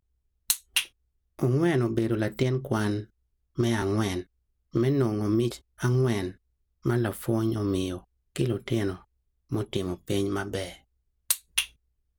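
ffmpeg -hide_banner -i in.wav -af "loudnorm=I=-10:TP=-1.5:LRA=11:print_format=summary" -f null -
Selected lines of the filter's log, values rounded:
Input Integrated:    -28.3 LUFS
Input True Peak:      -6.2 dBTP
Input LRA:             3.7 LU
Input Threshold:     -38.9 LUFS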